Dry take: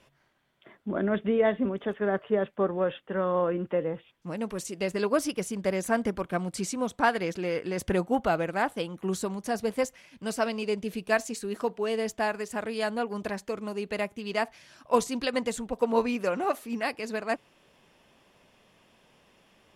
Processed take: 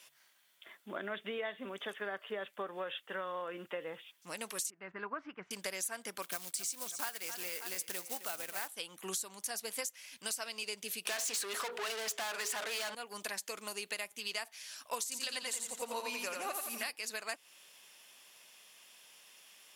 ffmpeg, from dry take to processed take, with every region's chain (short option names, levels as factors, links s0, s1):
-filter_complex "[0:a]asettb=1/sr,asplit=3[s0][s1][s2];[s0]atrim=end=4.704[s3];[s1]atrim=start=4.7:end=5.51,asetpts=PTS-STARTPTS,afade=t=in:d=0.004:c=qsin,afade=t=out:st=0.806:d=0.004:c=qsin,lowpass=f=1600:w=0.5412,lowpass=f=1600:w=1.3066,equalizer=f=520:t=o:w=0.82:g=-11.5[s4];[s2]atrim=start=5.506[s5];[s3][s4]acrossfade=d=0.004:c1=hsin:c2=qsin[s6];[s6][s5]acrossfade=d=0.004:c1=qsin:c2=hsin,asettb=1/sr,asplit=3[s7][s8][s9];[s7]atrim=end=6.224[s10];[s8]atrim=start=6.22:end=8.68,asetpts=PTS-STARTPTS,afade=t=in:d=0.004:c=qsin,afade=t=out:st=2.456:d=0.004:c=qsin,aecho=1:1:262|584:0.188|0.133,atrim=end_sample=108486,acrusher=bits=4:mode=log:mix=0:aa=0.000001[s11];[s9]atrim=start=8.676[s12];[s10][s11]acrossfade=d=0.004:c1=hsin:c2=qsin[s13];[s13][s12]acrossfade=d=0.004:c1=qsin:c2=hsin,asettb=1/sr,asplit=3[s14][s15][s16];[s14]atrim=end=11.054[s17];[s15]atrim=start=11.05:end=12.95,asetpts=PTS-STARTPTS,afade=t=in:d=0.004:c=qsin,afade=t=out:st=1.896:d=0.004:c=qsin,lowshelf=f=160:g=-10.5,bandreject=f=60:t=h:w=6,bandreject=f=120:t=h:w=6,bandreject=f=180:t=h:w=6,bandreject=f=240:t=h:w=6,bandreject=f=300:t=h:w=6,bandreject=f=360:t=h:w=6,bandreject=f=420:t=h:w=6,bandreject=f=480:t=h:w=6,bandreject=f=540:t=h:w=6,bandreject=f=600:t=h:w=6,asplit=2[s18][s19];[s19]highpass=f=720:p=1,volume=56.2,asoftclip=type=tanh:threshold=0.266[s20];[s18][s20]amix=inputs=2:normalize=0,lowpass=f=1500:p=1,volume=0.501[s21];[s16]atrim=start=12.946[s22];[s17][s21]acrossfade=d=0.004:c1=hsin:c2=qsin[s23];[s23][s22]acrossfade=d=0.004:c1=qsin:c2=hsin,asettb=1/sr,asplit=3[s24][s25][s26];[s24]atrim=end=15.034[s27];[s25]atrim=start=15.03:end=16.9,asetpts=PTS-STARTPTS,afade=t=in:d=0.004:c=qsin,afade=t=out:st=1.866:d=0.004:c=qsin,equalizer=f=61:w=0.65:g=6,aecho=1:1:86|172|258|344|430|516:0.631|0.278|0.122|0.0537|0.0236|0.0104,atrim=end_sample=82467[s28];[s26]atrim=start=16.896[s29];[s27][s28]acrossfade=d=0.004:c1=hsin:c2=qsin[s30];[s30][s29]acrossfade=d=0.004:c1=qsin:c2=hsin,aderivative,acompressor=threshold=0.00355:ratio=6,volume=4.47"